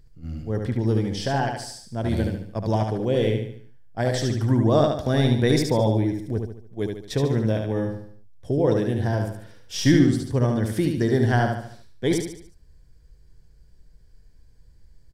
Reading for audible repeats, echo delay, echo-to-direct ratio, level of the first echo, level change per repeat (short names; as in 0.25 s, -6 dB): 5, 73 ms, -3.5 dB, -4.5 dB, -7.0 dB